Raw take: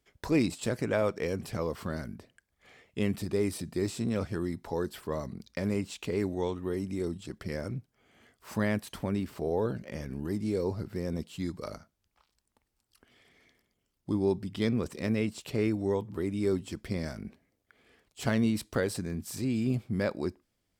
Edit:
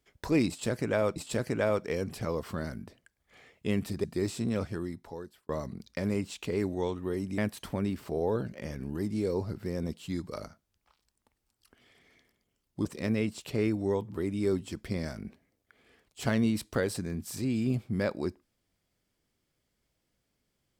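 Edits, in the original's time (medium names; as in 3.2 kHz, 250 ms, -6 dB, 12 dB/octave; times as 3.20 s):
0.48–1.16 s: loop, 2 plays
3.36–3.64 s: delete
4.16–5.09 s: fade out
6.98–8.68 s: delete
14.15–14.85 s: delete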